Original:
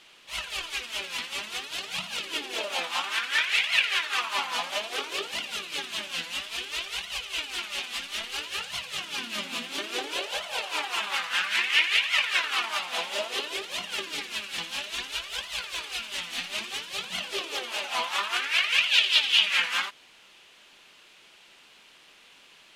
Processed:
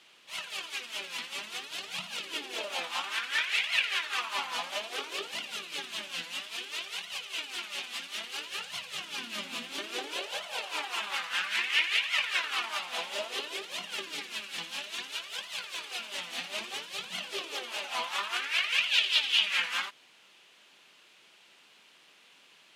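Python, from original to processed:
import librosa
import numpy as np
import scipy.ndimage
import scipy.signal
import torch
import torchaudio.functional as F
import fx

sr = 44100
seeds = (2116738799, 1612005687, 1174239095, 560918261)

y = fx.peak_eq(x, sr, hz=600.0, db=6.0, octaves=1.5, at=(15.91, 16.87))
y = scipy.signal.sosfilt(scipy.signal.butter(4, 120.0, 'highpass', fs=sr, output='sos'), y)
y = y * 10.0 ** (-4.5 / 20.0)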